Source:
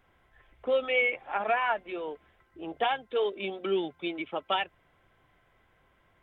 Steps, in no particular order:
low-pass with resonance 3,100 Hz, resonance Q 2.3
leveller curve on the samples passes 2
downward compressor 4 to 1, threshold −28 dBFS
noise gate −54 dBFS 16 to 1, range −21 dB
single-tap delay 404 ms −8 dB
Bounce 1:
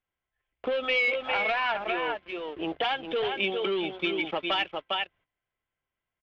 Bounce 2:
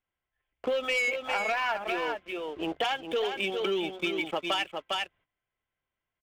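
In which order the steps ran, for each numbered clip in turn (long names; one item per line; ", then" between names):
noise gate, then single-tap delay, then leveller curve on the samples, then downward compressor, then low-pass with resonance
noise gate, then low-pass with resonance, then leveller curve on the samples, then single-tap delay, then downward compressor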